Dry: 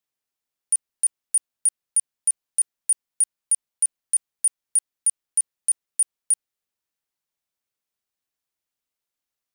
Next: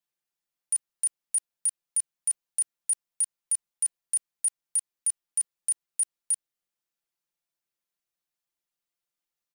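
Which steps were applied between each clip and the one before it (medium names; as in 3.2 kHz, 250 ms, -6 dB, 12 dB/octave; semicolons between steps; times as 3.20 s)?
comb 5.8 ms, depth 85%; trim -5.5 dB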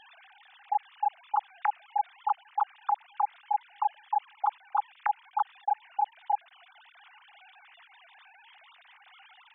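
formants replaced by sine waves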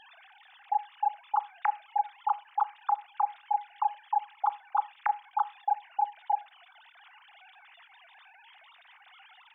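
reverberation RT60 0.35 s, pre-delay 29 ms, DRR 16.5 dB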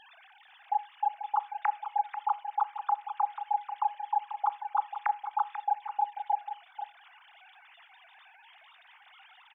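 delay 489 ms -10 dB; trim -1 dB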